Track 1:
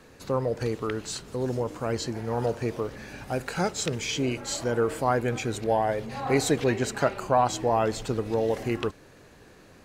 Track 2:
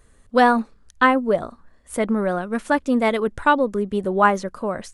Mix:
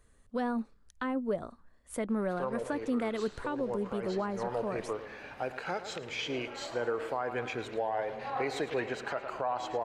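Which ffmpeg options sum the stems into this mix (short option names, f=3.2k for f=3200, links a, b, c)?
-filter_complex "[0:a]acrossover=split=390 3800:gain=0.224 1 0.126[a][b][c];[a][b][c]amix=inputs=3:normalize=0,adelay=2100,volume=-2dB,asplit=2[d][e];[e]volume=-13.5dB[f];[1:a]acrossover=split=430[g][h];[h]acompressor=threshold=-23dB:ratio=5[i];[g][i]amix=inputs=2:normalize=0,volume=-9.5dB,asplit=2[j][k];[k]apad=whole_len=526864[l];[d][l]sidechaincompress=threshold=-33dB:ratio=8:attack=16:release=196[m];[f]aecho=0:1:108|216|324|432|540|648:1|0.46|0.212|0.0973|0.0448|0.0206[n];[m][j][n]amix=inputs=3:normalize=0,alimiter=limit=-22.5dB:level=0:latency=1:release=170"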